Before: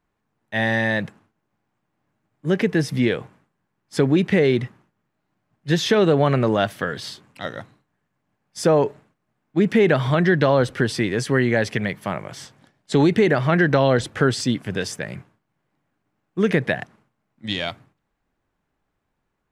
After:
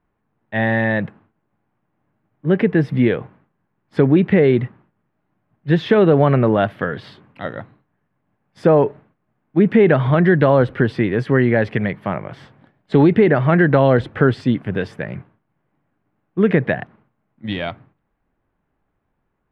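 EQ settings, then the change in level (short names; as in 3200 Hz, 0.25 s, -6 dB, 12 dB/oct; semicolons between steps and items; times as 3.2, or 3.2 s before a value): air absorption 490 m; high shelf 8800 Hz +5 dB; +5.0 dB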